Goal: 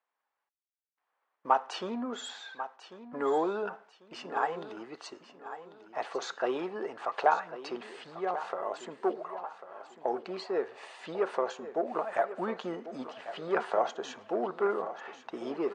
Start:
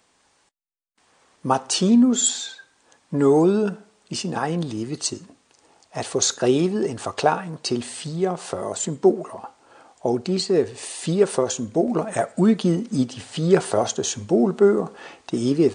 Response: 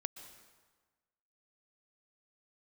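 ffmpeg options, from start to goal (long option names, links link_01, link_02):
-filter_complex "[0:a]asoftclip=type=tanh:threshold=-6.5dB,highpass=790,agate=range=-17dB:threshold=-57dB:ratio=16:detection=peak,lowpass=1600,asplit=2[link_01][link_02];[link_02]aecho=0:1:1094|2188|3282:0.224|0.0739|0.0244[link_03];[link_01][link_03]amix=inputs=2:normalize=0"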